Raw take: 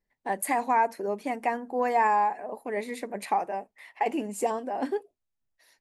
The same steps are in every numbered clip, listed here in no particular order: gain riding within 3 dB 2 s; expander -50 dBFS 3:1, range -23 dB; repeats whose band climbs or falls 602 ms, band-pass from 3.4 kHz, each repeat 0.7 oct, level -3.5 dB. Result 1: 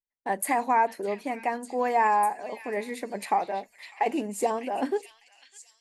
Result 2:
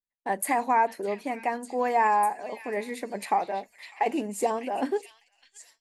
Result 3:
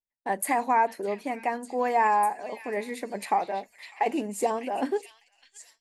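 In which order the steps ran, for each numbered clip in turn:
gain riding > expander > repeats whose band climbs or falls; gain riding > repeats whose band climbs or falls > expander; repeats whose band climbs or falls > gain riding > expander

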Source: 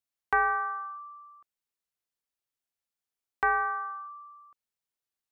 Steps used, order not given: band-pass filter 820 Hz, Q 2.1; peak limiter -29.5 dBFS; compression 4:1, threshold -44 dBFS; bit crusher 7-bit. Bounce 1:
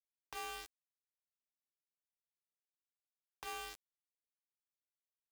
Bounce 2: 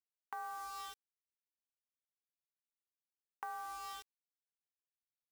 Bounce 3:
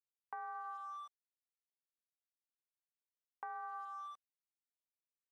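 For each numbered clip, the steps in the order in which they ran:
compression > peak limiter > band-pass filter > bit crusher; band-pass filter > bit crusher > compression > peak limiter; bit crusher > peak limiter > band-pass filter > compression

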